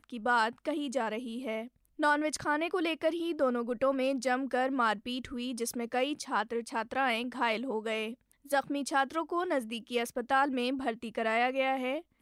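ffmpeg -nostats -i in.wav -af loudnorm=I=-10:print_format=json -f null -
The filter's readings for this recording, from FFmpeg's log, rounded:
"input_i" : "-31.6",
"input_tp" : "-16.5",
"input_lra" : "1.1",
"input_thresh" : "-41.7",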